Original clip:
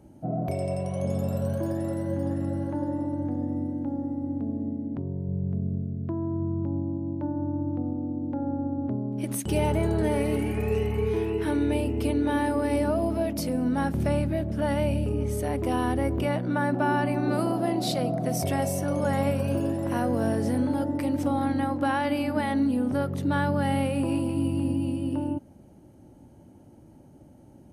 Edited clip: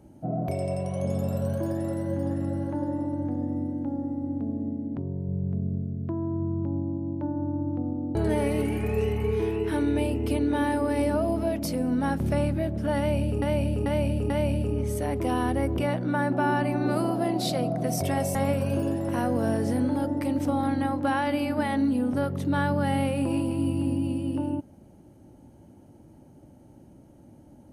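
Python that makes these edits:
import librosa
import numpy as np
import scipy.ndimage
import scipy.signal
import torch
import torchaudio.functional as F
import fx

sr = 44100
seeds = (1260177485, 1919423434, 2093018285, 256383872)

y = fx.edit(x, sr, fx.cut(start_s=8.15, length_s=1.74),
    fx.repeat(start_s=14.72, length_s=0.44, count=4),
    fx.cut(start_s=18.77, length_s=0.36), tone=tone)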